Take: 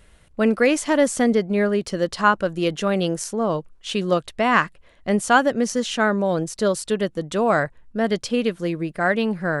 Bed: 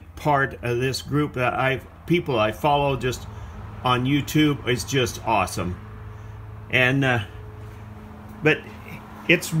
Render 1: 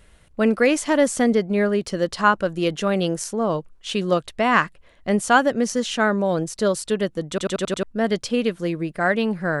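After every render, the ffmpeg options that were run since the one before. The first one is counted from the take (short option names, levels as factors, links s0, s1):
-filter_complex "[0:a]asplit=7[s0][s1][s2][s3][s4][s5][s6];[s0]atrim=end=7.382[s7];[s1]atrim=start=7.288:end=7.382[s8];[s2]atrim=start=7.288:end=7.382[s9];[s3]atrim=start=7.288:end=7.382[s10];[s4]atrim=start=7.288:end=7.382[s11];[s5]atrim=start=7.288:end=7.382[s12];[s6]atrim=start=7.828[s13];[s7][s8]acrossfade=d=0.004:c1=hsin:c2=hsin[s14];[s14][s9]acrossfade=d=0.004:c1=hsin:c2=hsin[s15];[s15][s10]acrossfade=d=0.004:c1=hsin:c2=hsin[s16];[s16][s11]acrossfade=d=0.004:c1=hsin:c2=hsin[s17];[s17][s12]acrossfade=d=0.004:c1=hsin:c2=hsin[s18];[s18][s13]acrossfade=d=0.004:c1=hsin:c2=hsin"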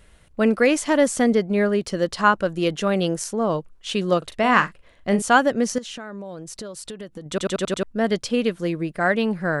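-filter_complex "[0:a]asettb=1/sr,asplit=3[s0][s1][s2];[s0]atrim=end=4.184[s3];[s1]atrim=start=4.18:end=5.22,asetpts=PTS-STARTPTS,afade=t=in:d=0.004:c=qsin,afade=t=out:st=1.036:d=0.004:c=qsin,asplit=2[s4][s5];[s5]adelay=40,volume=0.299[s6];[s4][s6]amix=inputs=2:normalize=0,atrim=end_sample=45864[s7];[s2]atrim=start=5.216[s8];[s3][s7]acrossfade=d=0.004:c1=hsin:c2=qsin[s9];[s9][s8]acrossfade=d=0.004:c1=qsin:c2=hsin,asettb=1/sr,asplit=3[s10][s11][s12];[s10]atrim=end=5.784[s13];[s11]atrim=start=5.78:end=7.26,asetpts=PTS-STARTPTS,afade=t=in:d=0.004:c=qsin,afade=t=out:st=1.476:d=0.004:c=qsin,acompressor=threshold=0.0282:ratio=12:attack=3.2:release=140:knee=1:detection=peak[s14];[s12]atrim=start=7.256[s15];[s13][s14]acrossfade=d=0.004:c1=hsin:c2=qsin[s16];[s16][s15]acrossfade=d=0.004:c1=qsin:c2=hsin"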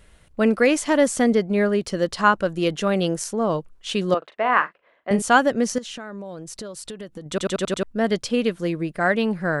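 -filter_complex "[0:a]asettb=1/sr,asplit=3[s0][s1][s2];[s0]atrim=end=4.144[s3];[s1]atrim=start=4.14:end=5.11,asetpts=PTS-STARTPTS,afade=t=in:d=0.004:c=qsin,afade=t=out:st=0.966:d=0.004:c=qsin,highpass=470,lowpass=2000[s4];[s2]atrim=start=5.106[s5];[s3][s4]acrossfade=d=0.004:c1=hsin:c2=qsin[s6];[s6][s5]acrossfade=d=0.004:c1=qsin:c2=hsin"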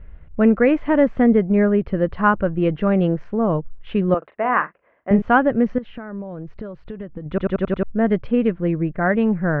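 -af "lowpass=f=2400:w=0.5412,lowpass=f=2400:w=1.3066,aemphasis=mode=reproduction:type=bsi"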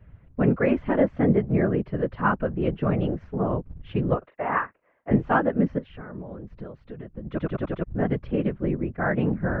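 -af "afreqshift=-17,afftfilt=real='hypot(re,im)*cos(2*PI*random(0))':imag='hypot(re,im)*sin(2*PI*random(1))':win_size=512:overlap=0.75"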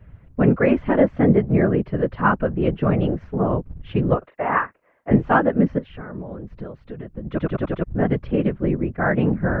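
-af "volume=1.68"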